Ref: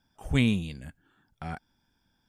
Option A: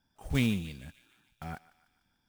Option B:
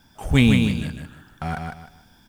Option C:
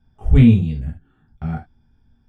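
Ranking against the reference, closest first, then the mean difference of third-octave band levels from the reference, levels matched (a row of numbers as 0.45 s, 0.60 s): A, B, C; 3.0 dB, 5.0 dB, 8.5 dB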